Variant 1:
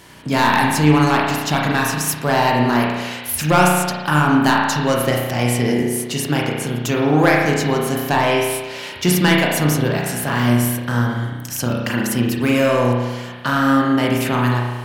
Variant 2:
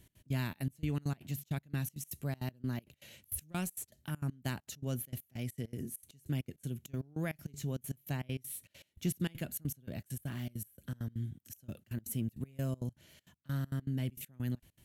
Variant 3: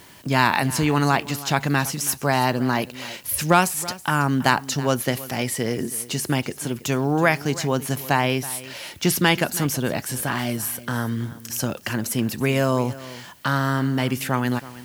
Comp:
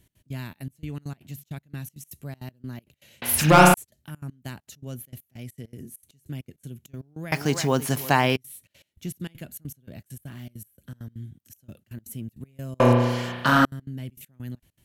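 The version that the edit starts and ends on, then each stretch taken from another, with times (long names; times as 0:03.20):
2
0:03.22–0:03.74: punch in from 1
0:07.32–0:08.36: punch in from 3
0:12.80–0:13.65: punch in from 1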